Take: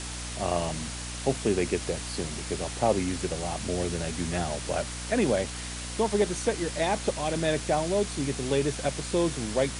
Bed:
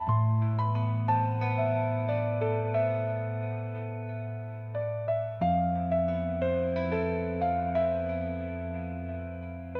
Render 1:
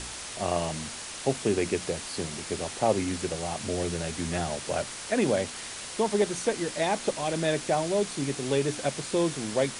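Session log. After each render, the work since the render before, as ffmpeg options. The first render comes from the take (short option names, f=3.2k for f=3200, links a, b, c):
-af "bandreject=f=60:t=h:w=4,bandreject=f=120:t=h:w=4,bandreject=f=180:t=h:w=4,bandreject=f=240:t=h:w=4,bandreject=f=300:t=h:w=4"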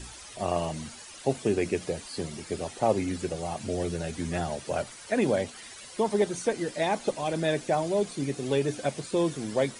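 -af "afftdn=nr=12:nf=-39"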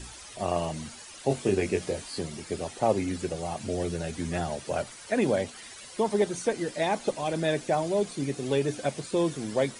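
-filter_complex "[0:a]asettb=1/sr,asplit=3[a][b][c];[a]atrim=end=1.284[d];[b]atrim=start=1.28:end=2.19,asetpts=PTS-STARTPTS,afade=t=in:d=0.004:c=qsin,afade=t=out:st=0.906:d=0.004:c=qsin,asplit=2[e][f];[f]adelay=21,volume=-4.5dB[g];[e][g]amix=inputs=2:normalize=0,atrim=end_sample=40131[h];[c]atrim=start=2.186[i];[d][h]acrossfade=d=0.004:c1=hsin:c2=qsin[j];[j][i]acrossfade=d=0.004:c1=qsin:c2=hsin"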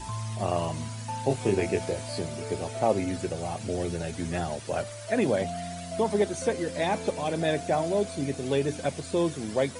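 -filter_complex "[1:a]volume=-9dB[a];[0:a][a]amix=inputs=2:normalize=0"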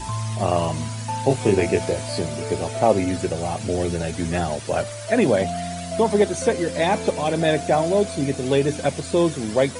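-af "volume=7dB"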